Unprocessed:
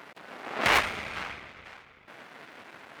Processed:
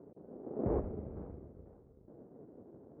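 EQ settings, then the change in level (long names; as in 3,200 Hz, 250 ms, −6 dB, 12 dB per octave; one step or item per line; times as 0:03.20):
transistor ladder low-pass 520 Hz, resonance 40%
low-shelf EQ 200 Hz +11 dB
+3.0 dB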